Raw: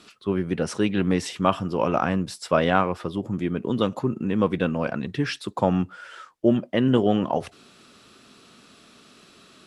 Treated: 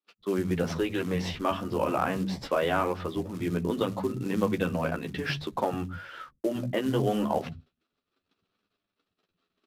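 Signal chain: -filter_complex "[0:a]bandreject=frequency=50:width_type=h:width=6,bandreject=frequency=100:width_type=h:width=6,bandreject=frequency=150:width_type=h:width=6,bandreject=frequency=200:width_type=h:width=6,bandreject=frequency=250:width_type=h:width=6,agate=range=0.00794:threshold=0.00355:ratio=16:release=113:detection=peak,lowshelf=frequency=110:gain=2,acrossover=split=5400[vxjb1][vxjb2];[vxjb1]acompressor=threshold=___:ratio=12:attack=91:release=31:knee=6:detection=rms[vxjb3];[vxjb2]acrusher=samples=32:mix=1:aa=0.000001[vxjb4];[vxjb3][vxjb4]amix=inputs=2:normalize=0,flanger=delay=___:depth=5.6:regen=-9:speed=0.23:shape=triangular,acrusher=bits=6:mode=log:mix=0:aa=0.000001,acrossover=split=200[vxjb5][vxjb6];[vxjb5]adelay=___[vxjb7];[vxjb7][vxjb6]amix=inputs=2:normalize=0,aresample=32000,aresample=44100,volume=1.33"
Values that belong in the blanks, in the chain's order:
0.0447, 9.8, 110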